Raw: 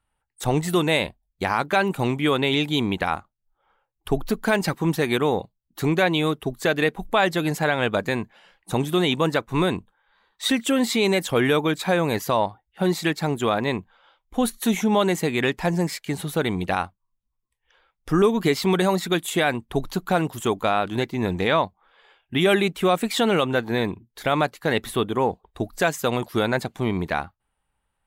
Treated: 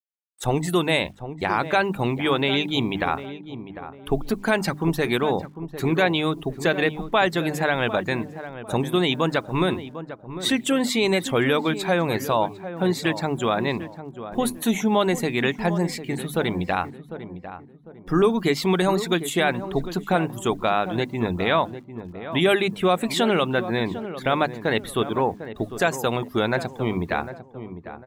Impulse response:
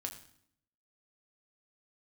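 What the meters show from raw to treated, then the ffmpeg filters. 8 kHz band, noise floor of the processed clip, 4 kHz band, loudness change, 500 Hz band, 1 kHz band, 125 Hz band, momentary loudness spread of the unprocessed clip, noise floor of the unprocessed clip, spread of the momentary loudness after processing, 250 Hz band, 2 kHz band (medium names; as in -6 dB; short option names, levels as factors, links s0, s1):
-1.0 dB, -45 dBFS, 0.0 dB, -0.5 dB, 0.0 dB, 0.0 dB, -0.5 dB, 8 LU, -78 dBFS, 14 LU, -0.5 dB, 0.0 dB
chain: -filter_complex "[0:a]afftdn=nr=15:nf=-43,bandreject=f=50:t=h:w=6,bandreject=f=100:t=h:w=6,bandreject=f=150:t=h:w=6,bandreject=f=200:t=h:w=6,bandreject=f=250:t=h:w=6,bandreject=f=300:t=h:w=6,adynamicequalizer=threshold=0.0126:dfrequency=470:dqfactor=6:tfrequency=470:tqfactor=6:attack=5:release=100:ratio=0.375:range=2:mode=cutabove:tftype=bell,acrusher=bits=9:mix=0:aa=0.000001,asplit=2[s0][s1];[s1]adelay=750,lowpass=f=1100:p=1,volume=0.282,asplit=2[s2][s3];[s3]adelay=750,lowpass=f=1100:p=1,volume=0.38,asplit=2[s4][s5];[s5]adelay=750,lowpass=f=1100:p=1,volume=0.38,asplit=2[s6][s7];[s7]adelay=750,lowpass=f=1100:p=1,volume=0.38[s8];[s0][s2][s4][s6][s8]amix=inputs=5:normalize=0"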